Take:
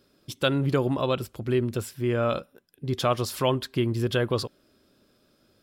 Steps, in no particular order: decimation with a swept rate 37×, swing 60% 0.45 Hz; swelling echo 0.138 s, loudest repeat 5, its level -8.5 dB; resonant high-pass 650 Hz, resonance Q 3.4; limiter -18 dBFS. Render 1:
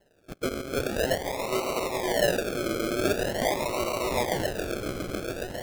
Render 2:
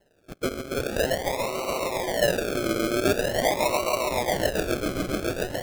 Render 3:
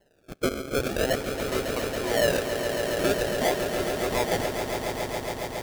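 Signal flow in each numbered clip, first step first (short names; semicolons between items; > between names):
resonant high-pass > limiter > swelling echo > decimation with a swept rate; swelling echo > limiter > resonant high-pass > decimation with a swept rate; resonant high-pass > decimation with a swept rate > limiter > swelling echo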